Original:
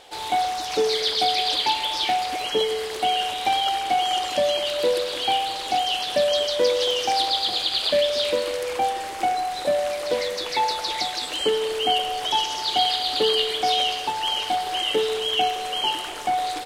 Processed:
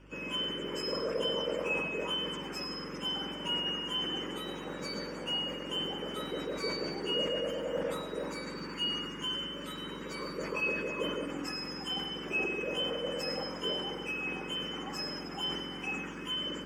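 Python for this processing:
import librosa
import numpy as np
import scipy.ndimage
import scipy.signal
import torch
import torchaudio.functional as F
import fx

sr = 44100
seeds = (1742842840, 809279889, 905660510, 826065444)

y = fx.octave_mirror(x, sr, pivot_hz=1500.0)
y = scipy.signal.sosfilt(scipy.signal.butter(2, 160.0, 'highpass', fs=sr, output='sos'), y)
y = fx.high_shelf(y, sr, hz=11000.0, db=-9.5)
y = fx.fixed_phaser(y, sr, hz=1700.0, stages=4)
y = y + 10.0 ** (-13.5 / 20.0) * np.pad(y, (int(110 * sr / 1000.0), 0))[:len(y)]
y = fx.add_hum(y, sr, base_hz=50, snr_db=22)
y = fx.peak_eq(y, sr, hz=230.0, db=-8.5, octaves=0.26)
y = fx.sustainer(y, sr, db_per_s=39.0)
y = y * 10.0 ** (-4.0 / 20.0)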